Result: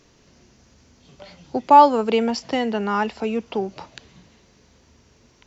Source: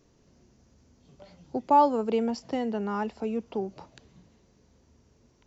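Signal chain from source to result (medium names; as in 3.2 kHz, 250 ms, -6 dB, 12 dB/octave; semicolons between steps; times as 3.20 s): peaking EQ 2.8 kHz +9.5 dB 3 oct; trim +5 dB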